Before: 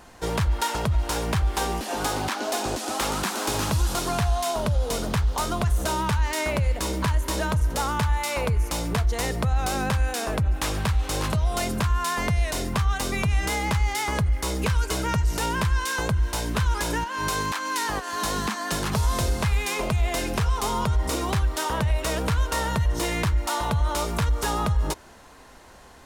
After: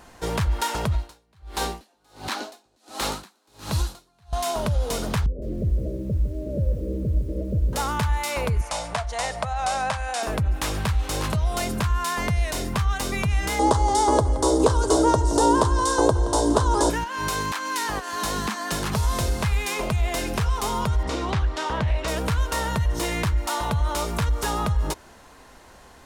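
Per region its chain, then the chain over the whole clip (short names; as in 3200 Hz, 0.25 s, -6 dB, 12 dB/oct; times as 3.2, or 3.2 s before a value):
0.92–4.33 bell 4100 Hz +7 dB 0.26 oct + dB-linear tremolo 1.4 Hz, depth 40 dB
5.26–7.73 steep low-pass 590 Hz 96 dB/oct + lo-fi delay 0.158 s, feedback 35%, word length 8-bit, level -10 dB
8.61–10.23 steep low-pass 10000 Hz + resonant low shelf 490 Hz -9 dB, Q 3
13.59–16.9 EQ curve 120 Hz 0 dB, 190 Hz -8 dB, 280 Hz +14 dB, 670 Hz +11 dB, 1000 Hz +9 dB, 2400 Hz -15 dB, 3400 Hz 0 dB, 9100 Hz +7 dB, 14000 Hz -18 dB + echo 0.172 s -15 dB
21.03–22.08 LPF 5200 Hz + Doppler distortion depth 0.18 ms
whole clip: dry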